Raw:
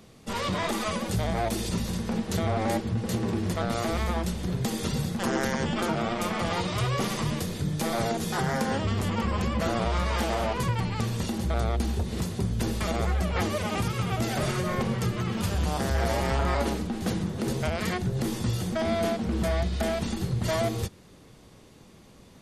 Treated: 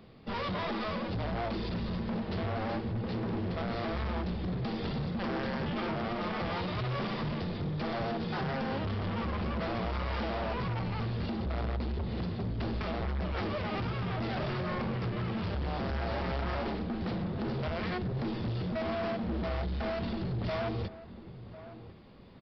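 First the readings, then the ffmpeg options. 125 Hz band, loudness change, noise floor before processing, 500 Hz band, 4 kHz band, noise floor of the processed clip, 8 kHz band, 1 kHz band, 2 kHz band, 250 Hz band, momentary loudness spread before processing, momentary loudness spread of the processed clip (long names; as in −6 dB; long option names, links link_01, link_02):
−5.5 dB, −6.0 dB, −52 dBFS, −6.0 dB, −7.5 dB, −48 dBFS, below −30 dB, −6.0 dB, −5.5 dB, −5.0 dB, 3 LU, 2 LU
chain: -filter_complex "[0:a]lowpass=frequency=3000:poles=1,aresample=11025,asoftclip=type=hard:threshold=-29.5dB,aresample=44100,asplit=2[link_01][link_02];[link_02]adelay=1050,volume=-14dB,highshelf=frequency=4000:gain=-23.6[link_03];[link_01][link_03]amix=inputs=2:normalize=0,volume=-1.5dB"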